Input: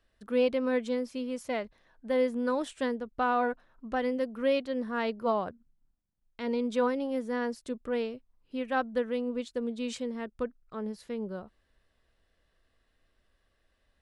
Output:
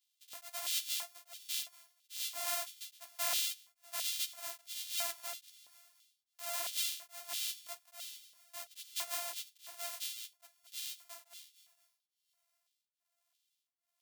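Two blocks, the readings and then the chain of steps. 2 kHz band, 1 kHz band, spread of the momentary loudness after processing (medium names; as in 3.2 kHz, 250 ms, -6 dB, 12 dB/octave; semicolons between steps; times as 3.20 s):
-9.0 dB, -15.5 dB, 16 LU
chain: sorted samples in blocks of 128 samples; differentiator; in parallel at -6 dB: overload inside the chain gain 17.5 dB; on the sum: chorus voices 2, 1.5 Hz, delay 13 ms, depth 3 ms; high-pass 370 Hz 12 dB/octave; on a send: thinning echo 236 ms, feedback 53%, high-pass 810 Hz, level -21.5 dB; on the sum: LFO high-pass square 1.5 Hz 690–3300 Hz; band-stop 1.6 kHz, Q 16; tremolo of two beating tones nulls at 1.2 Hz; trim +2 dB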